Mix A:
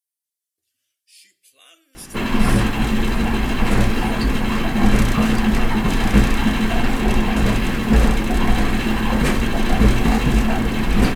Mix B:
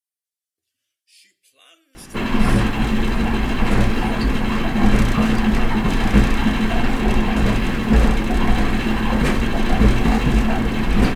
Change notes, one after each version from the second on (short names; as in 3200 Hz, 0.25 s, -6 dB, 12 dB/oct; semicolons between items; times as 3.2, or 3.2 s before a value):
master: add high shelf 6600 Hz -7 dB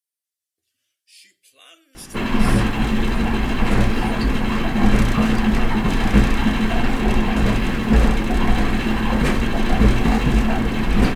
speech +4.0 dB; reverb: off